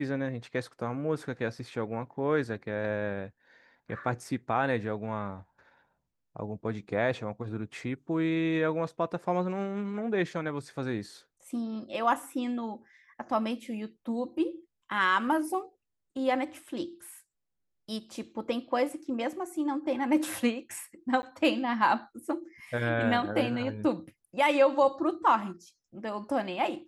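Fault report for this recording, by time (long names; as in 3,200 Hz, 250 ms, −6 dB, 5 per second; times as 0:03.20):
0:21.22–0:21.23: drop-out 10 ms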